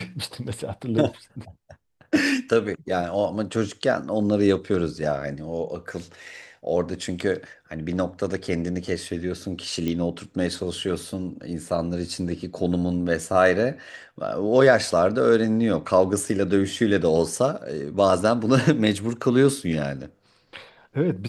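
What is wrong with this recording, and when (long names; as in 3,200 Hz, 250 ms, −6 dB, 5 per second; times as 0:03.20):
0:09.88: click −15 dBFS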